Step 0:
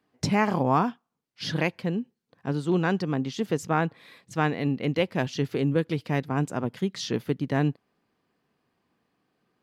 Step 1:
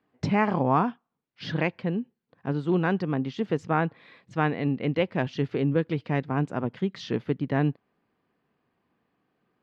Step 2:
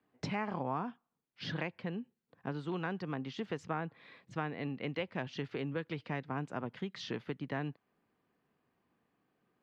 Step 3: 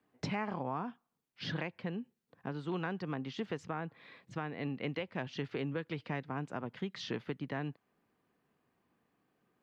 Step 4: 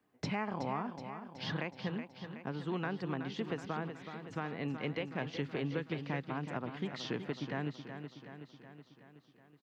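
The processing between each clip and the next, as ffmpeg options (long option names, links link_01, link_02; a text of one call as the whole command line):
ffmpeg -i in.wav -af "lowpass=3000" out.wav
ffmpeg -i in.wav -filter_complex "[0:a]acrossover=split=100|770[link_01][link_02][link_03];[link_01]acompressor=threshold=-54dB:ratio=4[link_04];[link_02]acompressor=threshold=-34dB:ratio=4[link_05];[link_03]acompressor=threshold=-34dB:ratio=4[link_06];[link_04][link_05][link_06]amix=inputs=3:normalize=0,volume=-4dB" out.wav
ffmpeg -i in.wav -af "alimiter=level_in=2dB:limit=-24dB:level=0:latency=1:release=275,volume=-2dB,volume=1dB" out.wav
ffmpeg -i in.wav -af "aecho=1:1:373|746|1119|1492|1865|2238|2611:0.355|0.213|0.128|0.0766|0.046|0.0276|0.0166" out.wav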